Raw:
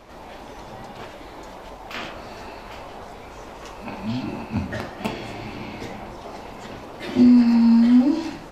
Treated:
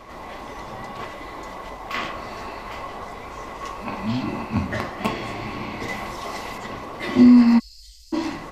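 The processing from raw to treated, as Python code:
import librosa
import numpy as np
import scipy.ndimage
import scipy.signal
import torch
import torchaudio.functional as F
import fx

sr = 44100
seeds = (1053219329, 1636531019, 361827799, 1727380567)

y = fx.high_shelf(x, sr, hz=2300.0, db=10.0, at=(5.88, 6.58))
y = fx.cheby2_bandstop(y, sr, low_hz=240.0, high_hz=1100.0, order=4, stop_db=80, at=(7.58, 8.12), fade=0.02)
y = fx.small_body(y, sr, hz=(1100.0, 2000.0), ring_ms=45, db=13)
y = y * 10.0 ** (2.0 / 20.0)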